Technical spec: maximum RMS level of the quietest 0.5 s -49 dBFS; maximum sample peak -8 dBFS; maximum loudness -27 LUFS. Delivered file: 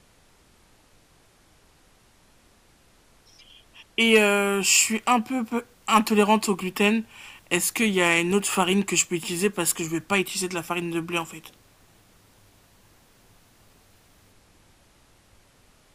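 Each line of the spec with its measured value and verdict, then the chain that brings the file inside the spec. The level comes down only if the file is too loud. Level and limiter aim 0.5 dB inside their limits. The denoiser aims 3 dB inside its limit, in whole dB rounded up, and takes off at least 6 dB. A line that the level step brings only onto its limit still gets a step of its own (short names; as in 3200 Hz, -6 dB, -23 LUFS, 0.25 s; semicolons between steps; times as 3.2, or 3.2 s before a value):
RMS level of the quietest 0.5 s -58 dBFS: OK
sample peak -5.0 dBFS: fail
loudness -22.5 LUFS: fail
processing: gain -5 dB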